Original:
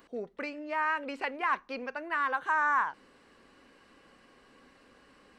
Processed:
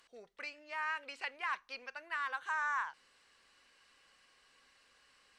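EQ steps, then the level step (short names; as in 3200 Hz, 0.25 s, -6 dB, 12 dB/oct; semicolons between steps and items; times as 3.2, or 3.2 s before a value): air absorption 62 m; pre-emphasis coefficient 0.9; bell 260 Hz -10 dB 1.6 oct; +7.0 dB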